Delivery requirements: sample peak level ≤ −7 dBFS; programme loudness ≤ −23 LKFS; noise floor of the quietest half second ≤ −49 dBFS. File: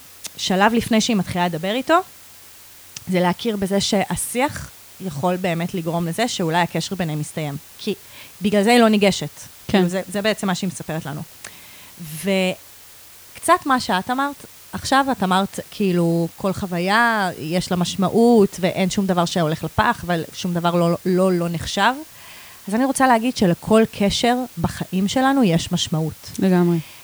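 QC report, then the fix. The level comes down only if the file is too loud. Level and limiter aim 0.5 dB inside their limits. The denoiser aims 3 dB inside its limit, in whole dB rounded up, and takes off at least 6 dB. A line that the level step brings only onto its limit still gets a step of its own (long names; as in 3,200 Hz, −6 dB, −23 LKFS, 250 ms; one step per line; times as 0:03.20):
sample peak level −2.5 dBFS: out of spec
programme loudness −19.5 LKFS: out of spec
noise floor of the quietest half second −44 dBFS: out of spec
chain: broadband denoise 6 dB, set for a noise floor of −44 dBFS
level −4 dB
brickwall limiter −7.5 dBFS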